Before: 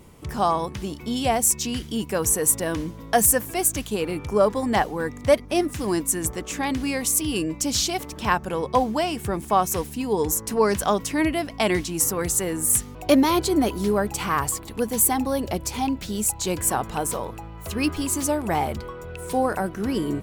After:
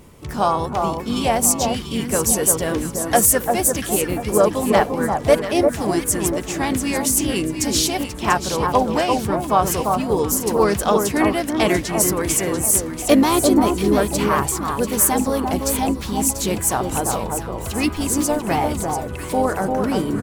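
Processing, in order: echo whose repeats swap between lows and highs 345 ms, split 1.4 kHz, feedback 56%, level -3.5 dB; harmony voices -4 st -10 dB, +3 st -15 dB; trim +2.5 dB

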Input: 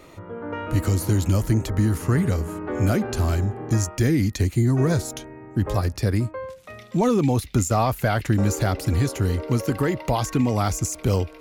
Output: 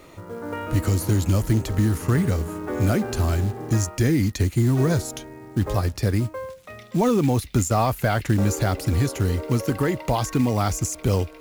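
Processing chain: companded quantiser 6-bit

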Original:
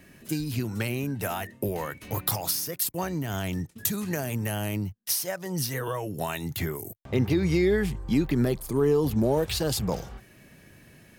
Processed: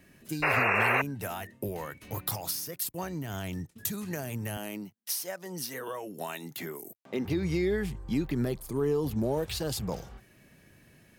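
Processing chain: 0.42–1.02 s: painted sound noise 370–2800 Hz -20 dBFS; 4.57–7.25 s: high-pass 190 Hz 24 dB/octave; trim -5.5 dB

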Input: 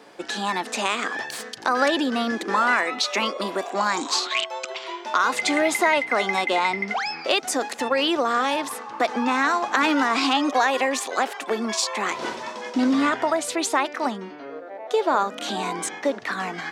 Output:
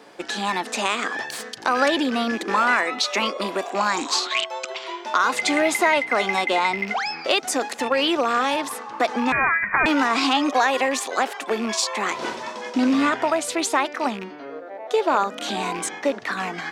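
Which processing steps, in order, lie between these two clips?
rattle on loud lows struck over -36 dBFS, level -25 dBFS; 9.32–9.86 s: frequency inversion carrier 2.7 kHz; trim +1 dB

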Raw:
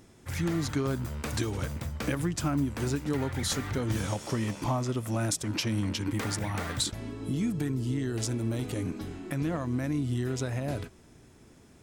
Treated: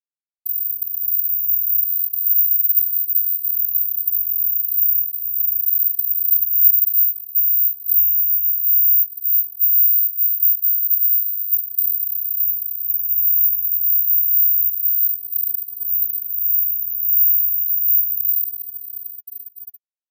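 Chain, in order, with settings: frequency-shifting echo 400 ms, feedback 31%, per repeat +130 Hz, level -12.5 dB; level rider gain up to 10 dB; distance through air 350 m; in parallel at +1 dB: compression, threshold -39 dBFS, peak gain reduction 22 dB; on the sum: bit crusher 5-bit; comb 6.7 ms, depth 55%; granular stretch 1.7×, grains 23 ms; inverse Chebyshev band-stop 420–8700 Hz, stop band 80 dB; careless resampling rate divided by 3×, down filtered, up zero stuff; RIAA curve recording; trim -5.5 dB

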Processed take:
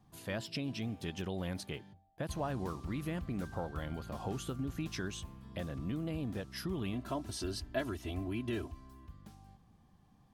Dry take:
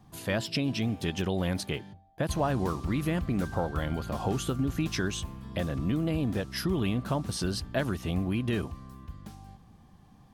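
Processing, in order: 6.93–9.08 s: comb 3 ms, depth 82%; trim -9 dB

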